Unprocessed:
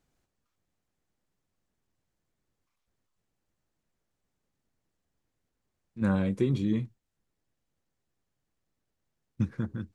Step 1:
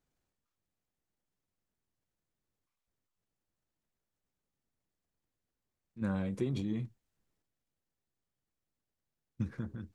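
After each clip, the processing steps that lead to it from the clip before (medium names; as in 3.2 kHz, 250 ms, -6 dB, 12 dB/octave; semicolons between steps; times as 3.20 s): transient shaper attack +2 dB, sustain +8 dB; trim -8.5 dB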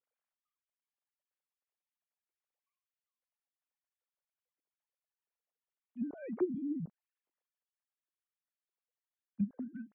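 formants replaced by sine waves; low-pass that closes with the level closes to 350 Hz, closed at -33.5 dBFS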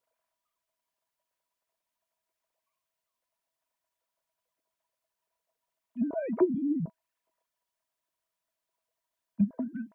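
small resonant body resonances 650/970 Hz, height 17 dB, ringing for 90 ms; trim +7.5 dB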